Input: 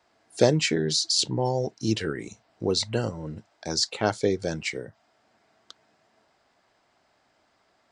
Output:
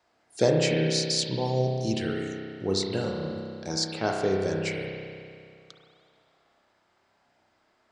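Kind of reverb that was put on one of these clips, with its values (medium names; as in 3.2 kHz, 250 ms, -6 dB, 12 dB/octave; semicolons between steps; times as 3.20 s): spring tank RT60 2.3 s, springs 31 ms, chirp 45 ms, DRR 0 dB; trim -4 dB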